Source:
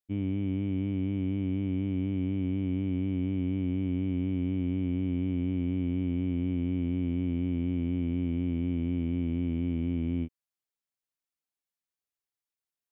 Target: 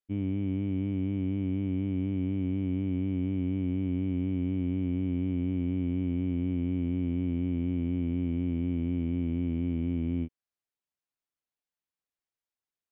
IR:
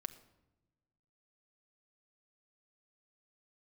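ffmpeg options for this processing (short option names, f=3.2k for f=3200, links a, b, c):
-af "lowpass=f=3.2k:p=1"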